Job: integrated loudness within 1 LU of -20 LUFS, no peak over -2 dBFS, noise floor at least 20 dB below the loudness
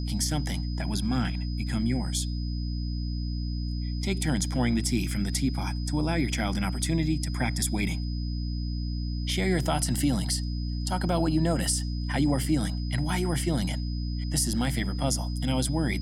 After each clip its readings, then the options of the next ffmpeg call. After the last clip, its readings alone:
hum 60 Hz; highest harmonic 300 Hz; hum level -28 dBFS; steady tone 5 kHz; tone level -44 dBFS; loudness -28.5 LUFS; peak level -12.5 dBFS; loudness target -20.0 LUFS
-> -af "bandreject=f=60:t=h:w=4,bandreject=f=120:t=h:w=4,bandreject=f=180:t=h:w=4,bandreject=f=240:t=h:w=4,bandreject=f=300:t=h:w=4"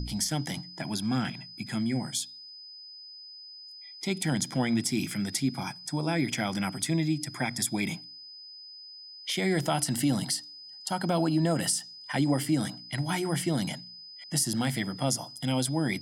hum not found; steady tone 5 kHz; tone level -44 dBFS
-> -af "bandreject=f=5000:w=30"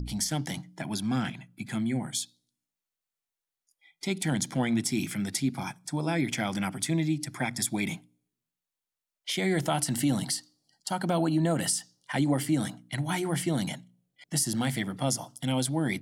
steady tone not found; loudness -29.5 LUFS; peak level -12.5 dBFS; loudness target -20.0 LUFS
-> -af "volume=2.99"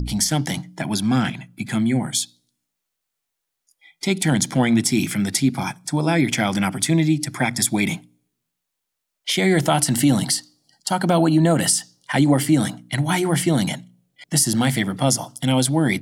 loudness -20.0 LUFS; peak level -3.0 dBFS; noise floor -80 dBFS

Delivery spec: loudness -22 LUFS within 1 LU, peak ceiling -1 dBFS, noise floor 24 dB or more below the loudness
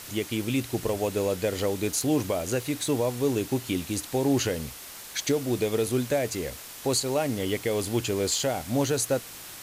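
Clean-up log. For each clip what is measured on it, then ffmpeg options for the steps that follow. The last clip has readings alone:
noise floor -43 dBFS; noise floor target -52 dBFS; loudness -27.5 LUFS; peak level -12.5 dBFS; loudness target -22.0 LUFS
-> -af "afftdn=nr=9:nf=-43"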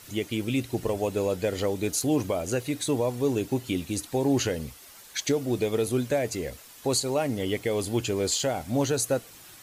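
noise floor -49 dBFS; noise floor target -52 dBFS
-> -af "afftdn=nr=6:nf=-49"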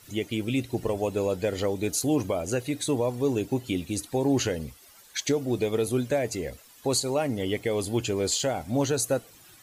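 noise floor -53 dBFS; loudness -27.5 LUFS; peak level -12.5 dBFS; loudness target -22.0 LUFS
-> -af "volume=1.88"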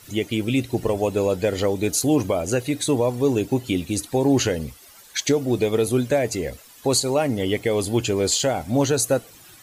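loudness -22.0 LUFS; peak level -7.0 dBFS; noise floor -48 dBFS

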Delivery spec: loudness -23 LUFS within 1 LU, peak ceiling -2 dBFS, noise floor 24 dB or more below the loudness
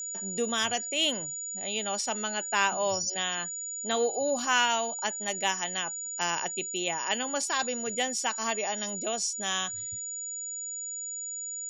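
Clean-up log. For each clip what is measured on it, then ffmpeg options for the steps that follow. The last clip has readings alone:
steady tone 6.9 kHz; tone level -34 dBFS; loudness -29.5 LUFS; peak level -11.0 dBFS; loudness target -23.0 LUFS
-> -af "bandreject=f=6900:w=30"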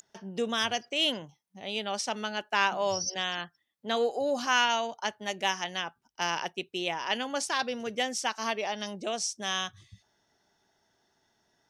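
steady tone not found; loudness -30.5 LUFS; peak level -11.5 dBFS; loudness target -23.0 LUFS
-> -af "volume=2.37"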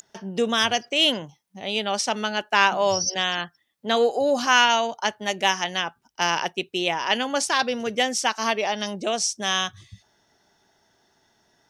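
loudness -23.0 LUFS; peak level -4.5 dBFS; noise floor -67 dBFS

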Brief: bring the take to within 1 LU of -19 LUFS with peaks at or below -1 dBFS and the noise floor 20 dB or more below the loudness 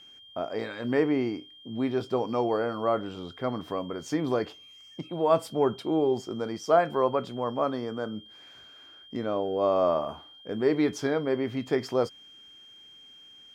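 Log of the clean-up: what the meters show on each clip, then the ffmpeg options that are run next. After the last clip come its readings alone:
steady tone 3.2 kHz; tone level -49 dBFS; loudness -28.5 LUFS; peak level -8.5 dBFS; loudness target -19.0 LUFS
-> -af "bandreject=f=3200:w=30"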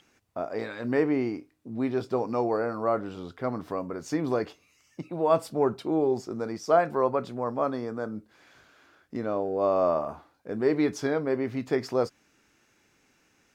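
steady tone not found; loudness -28.5 LUFS; peak level -8.5 dBFS; loudness target -19.0 LUFS
-> -af "volume=2.99,alimiter=limit=0.891:level=0:latency=1"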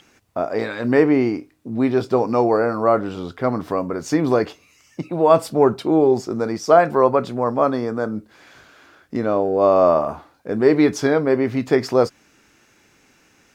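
loudness -19.0 LUFS; peak level -1.0 dBFS; noise floor -57 dBFS

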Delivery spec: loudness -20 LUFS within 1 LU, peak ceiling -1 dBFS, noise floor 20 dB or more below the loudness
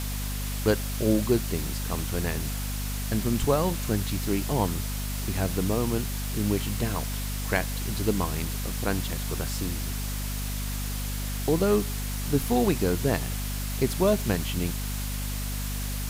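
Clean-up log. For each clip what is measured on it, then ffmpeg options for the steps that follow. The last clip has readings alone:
hum 50 Hz; highest harmonic 250 Hz; hum level -29 dBFS; noise floor -31 dBFS; noise floor target -48 dBFS; loudness -28.0 LUFS; peak level -9.5 dBFS; loudness target -20.0 LUFS
-> -af "bandreject=f=50:t=h:w=4,bandreject=f=100:t=h:w=4,bandreject=f=150:t=h:w=4,bandreject=f=200:t=h:w=4,bandreject=f=250:t=h:w=4"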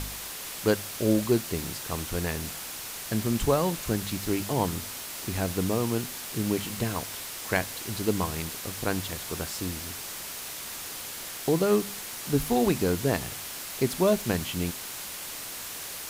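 hum not found; noise floor -38 dBFS; noise floor target -49 dBFS
-> -af "afftdn=nr=11:nf=-38"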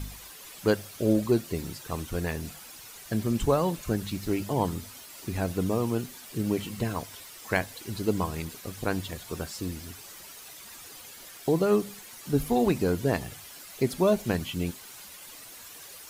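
noise floor -47 dBFS; noise floor target -49 dBFS
-> -af "afftdn=nr=6:nf=-47"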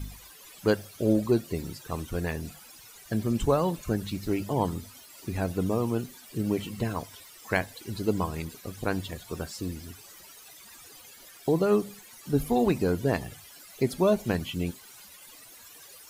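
noise floor -50 dBFS; loudness -29.0 LUFS; peak level -10.5 dBFS; loudness target -20.0 LUFS
-> -af "volume=2.82"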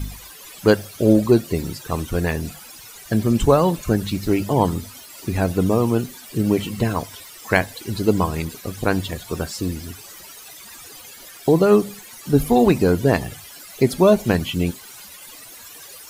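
loudness -20.0 LUFS; peak level -1.5 dBFS; noise floor -41 dBFS

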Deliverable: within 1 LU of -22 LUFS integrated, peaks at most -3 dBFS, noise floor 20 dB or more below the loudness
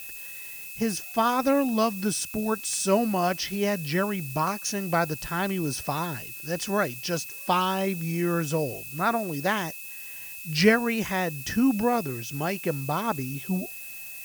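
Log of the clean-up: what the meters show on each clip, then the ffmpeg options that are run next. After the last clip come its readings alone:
steady tone 2.6 kHz; tone level -42 dBFS; noise floor -40 dBFS; noise floor target -47 dBFS; loudness -27.0 LUFS; peak level -7.0 dBFS; loudness target -22.0 LUFS
-> -af "bandreject=f=2600:w=30"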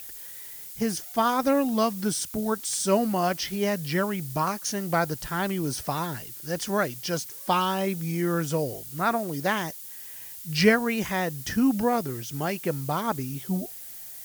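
steady tone not found; noise floor -41 dBFS; noise floor target -47 dBFS
-> -af "afftdn=nr=6:nf=-41"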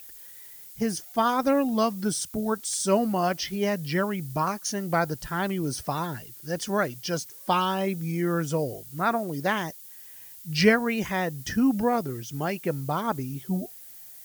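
noise floor -46 dBFS; noise floor target -47 dBFS
-> -af "afftdn=nr=6:nf=-46"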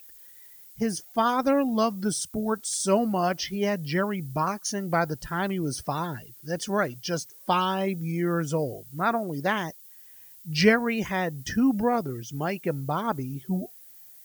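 noise floor -50 dBFS; loudness -27.0 LUFS; peak level -7.0 dBFS; loudness target -22.0 LUFS
-> -af "volume=1.78,alimiter=limit=0.708:level=0:latency=1"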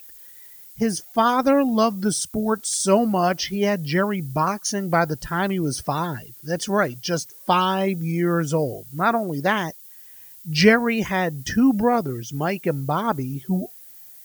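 loudness -22.0 LUFS; peak level -3.0 dBFS; noise floor -45 dBFS

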